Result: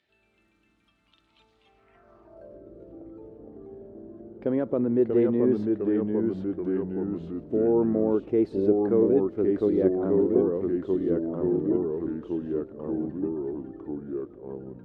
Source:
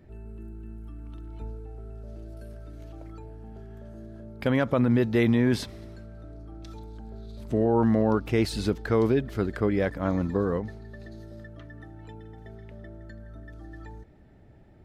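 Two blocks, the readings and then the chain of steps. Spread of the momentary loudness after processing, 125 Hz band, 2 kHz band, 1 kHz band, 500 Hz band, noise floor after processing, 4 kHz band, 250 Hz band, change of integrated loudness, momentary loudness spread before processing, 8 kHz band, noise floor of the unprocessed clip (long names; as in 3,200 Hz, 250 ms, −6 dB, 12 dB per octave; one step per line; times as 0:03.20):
22 LU, −6.5 dB, below −10 dB, −6.5 dB, +4.5 dB, −68 dBFS, below −15 dB, +2.5 dB, −0.5 dB, 22 LU, below −25 dB, −52 dBFS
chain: delay with pitch and tempo change per echo 92 ms, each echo −2 semitones, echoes 3
band-pass filter sweep 3,500 Hz → 370 Hz, 0:01.63–0:02.70
level +4.5 dB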